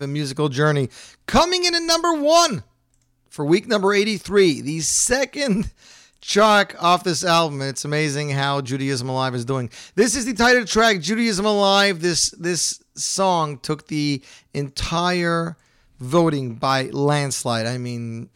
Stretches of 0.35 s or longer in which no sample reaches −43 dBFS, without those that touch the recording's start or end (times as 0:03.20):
0:02.62–0:03.32
0:15.54–0:16.00